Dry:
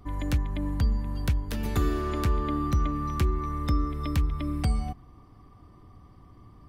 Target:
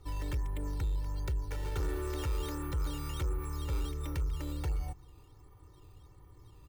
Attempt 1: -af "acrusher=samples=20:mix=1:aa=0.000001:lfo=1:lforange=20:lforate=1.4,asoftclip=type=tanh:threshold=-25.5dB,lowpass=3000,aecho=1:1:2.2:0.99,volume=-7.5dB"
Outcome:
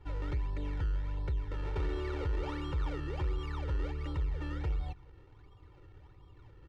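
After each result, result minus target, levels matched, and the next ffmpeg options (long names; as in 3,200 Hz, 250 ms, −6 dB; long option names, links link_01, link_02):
sample-and-hold swept by an LFO: distortion +6 dB; 4,000 Hz band −3.0 dB
-af "acrusher=samples=8:mix=1:aa=0.000001:lfo=1:lforange=8:lforate=1.4,asoftclip=type=tanh:threshold=-25.5dB,lowpass=3000,aecho=1:1:2.2:0.99,volume=-7.5dB"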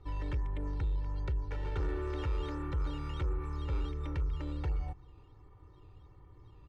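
4,000 Hz band −4.5 dB
-af "acrusher=samples=8:mix=1:aa=0.000001:lfo=1:lforange=8:lforate=1.4,asoftclip=type=tanh:threshold=-25.5dB,aecho=1:1:2.2:0.99,volume=-7.5dB"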